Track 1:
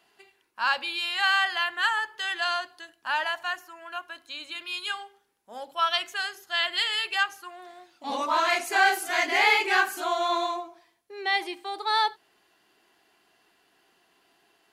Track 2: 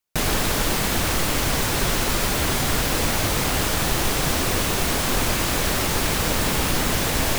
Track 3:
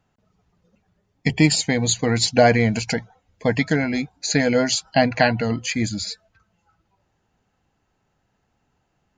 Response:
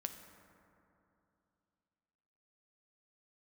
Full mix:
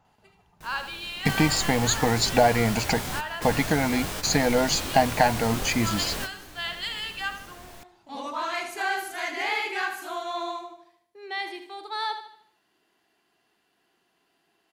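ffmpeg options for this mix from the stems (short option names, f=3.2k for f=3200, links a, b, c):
-filter_complex "[0:a]equalizer=f=160:t=o:w=2.1:g=5,adelay=50,volume=-6.5dB,asplit=2[a][b];[b]volume=-9.5dB[c];[1:a]flanger=delay=20:depth=5.4:speed=0.5,adelay=450,volume=-8.5dB,asplit=2[d][e];[e]volume=-13dB[f];[2:a]equalizer=f=880:t=o:w=0.62:g=13,volume=0.5dB,asplit=2[g][h];[h]apad=whole_len=345414[i];[d][i]sidechaingate=range=-33dB:threshold=-44dB:ratio=16:detection=peak[j];[a][g]amix=inputs=2:normalize=0,acompressor=threshold=-23dB:ratio=2,volume=0dB[k];[3:a]atrim=start_sample=2205[l];[f][l]afir=irnorm=-1:irlink=0[m];[c]aecho=0:1:76|152|228|304|380|456:1|0.43|0.185|0.0795|0.0342|0.0147[n];[j][k][m][n]amix=inputs=4:normalize=0"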